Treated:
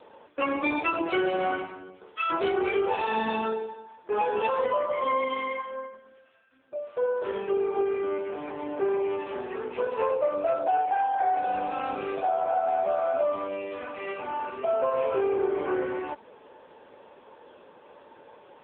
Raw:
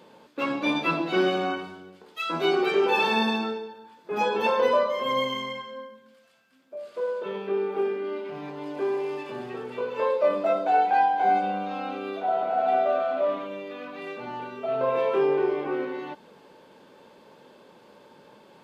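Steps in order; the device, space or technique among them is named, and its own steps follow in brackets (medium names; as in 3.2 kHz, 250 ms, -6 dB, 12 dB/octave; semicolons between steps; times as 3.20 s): voicemail (band-pass 340–3200 Hz; compression 10:1, threshold -26 dBFS, peak gain reduction 9.5 dB; trim +5 dB; AMR-NB 6.7 kbps 8 kHz)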